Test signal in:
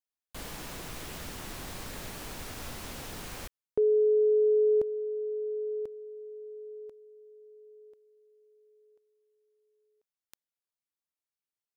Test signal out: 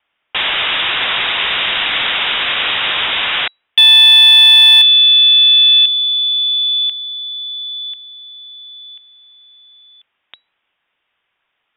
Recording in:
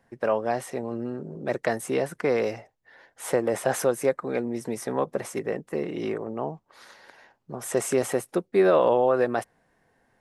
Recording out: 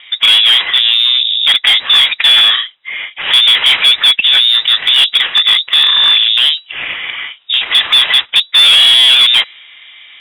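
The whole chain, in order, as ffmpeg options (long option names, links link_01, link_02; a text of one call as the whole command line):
ffmpeg -i in.wav -filter_complex "[0:a]asplit=2[link_01][link_02];[link_02]highpass=frequency=720:poles=1,volume=31dB,asoftclip=type=tanh:threshold=-9dB[link_03];[link_01][link_03]amix=inputs=2:normalize=0,lowpass=frequency=2600:poles=1,volume=-6dB,lowpass=frequency=3300:width_type=q:width=0.5098,lowpass=frequency=3300:width_type=q:width=0.6013,lowpass=frequency=3300:width_type=q:width=0.9,lowpass=frequency=3300:width_type=q:width=2.563,afreqshift=-3900,asoftclip=type=hard:threshold=-11.5dB,volume=9dB" out.wav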